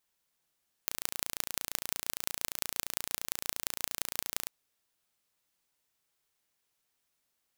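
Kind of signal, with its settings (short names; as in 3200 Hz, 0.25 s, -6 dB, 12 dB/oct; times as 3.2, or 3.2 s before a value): pulse train 28.7/s, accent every 5, -2 dBFS 3.62 s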